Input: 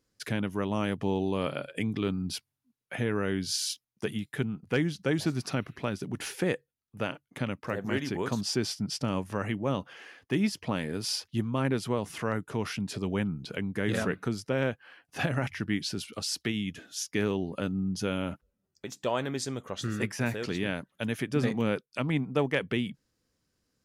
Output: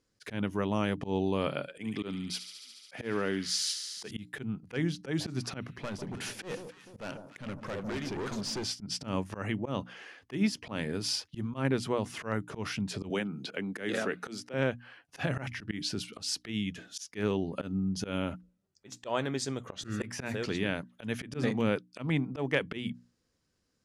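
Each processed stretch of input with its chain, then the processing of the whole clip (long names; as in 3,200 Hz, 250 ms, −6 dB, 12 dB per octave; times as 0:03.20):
0:01.68–0:04.11: Bessel high-pass filter 190 Hz + delay with a high-pass on its return 71 ms, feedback 84%, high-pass 2,600 Hz, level −9 dB
0:05.65–0:08.64: gain into a clipping stage and back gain 32.5 dB + delay that swaps between a low-pass and a high-pass 149 ms, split 1,100 Hz, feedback 62%, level −9.5 dB
0:13.10–0:14.54: high-pass filter 260 Hz + parametric band 1,000 Hz −5.5 dB 0.3 octaves + multiband upward and downward compressor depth 100%
whole clip: low-pass filter 9,600 Hz 12 dB per octave; mains-hum notches 60/120/180/240/300 Hz; volume swells 113 ms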